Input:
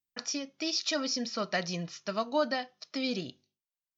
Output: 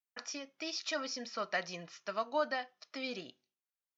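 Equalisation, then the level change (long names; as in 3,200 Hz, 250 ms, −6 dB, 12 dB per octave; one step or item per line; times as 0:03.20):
high-pass filter 1,100 Hz 6 dB per octave
parametric band 4,300 Hz −7 dB 1.5 octaves
high-shelf EQ 6,400 Hz −11 dB
+2.0 dB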